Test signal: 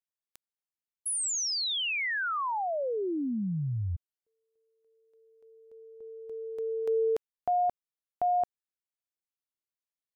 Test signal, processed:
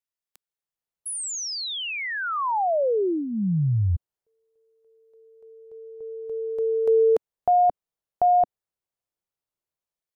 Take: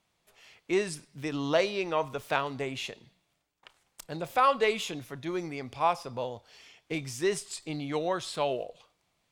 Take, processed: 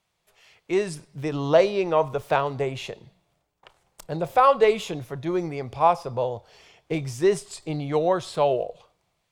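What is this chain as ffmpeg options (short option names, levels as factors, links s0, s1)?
-filter_complex "[0:a]equalizer=f=260:w=2.9:g=-9.5,acrossover=split=990[s0][s1];[s0]dynaudnorm=f=520:g=3:m=3.16[s2];[s2][s1]amix=inputs=2:normalize=0"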